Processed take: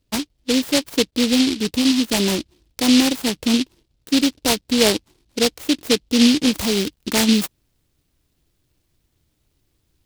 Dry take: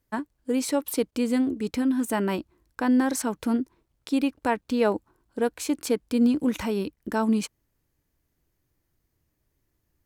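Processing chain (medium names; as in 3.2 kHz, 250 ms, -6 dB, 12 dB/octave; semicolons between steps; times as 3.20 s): treble shelf 2.4 kHz -11.5 dB, from 6.58 s +2 dB; delay time shaken by noise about 3.6 kHz, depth 0.23 ms; trim +7 dB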